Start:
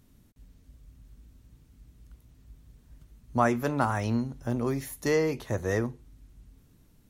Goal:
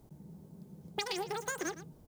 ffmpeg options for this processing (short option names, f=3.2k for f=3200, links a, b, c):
-filter_complex "[0:a]acrossover=split=3500[a][b];[b]acompressor=threshold=-53dB:ratio=4:attack=1:release=60[c];[a][c]amix=inputs=2:normalize=0,asetrate=150822,aresample=44100,acompressor=threshold=-27dB:ratio=6,equalizer=f=1.4k:w=0.36:g=-12.5,aecho=1:1:114:0.2,volume=3.5dB"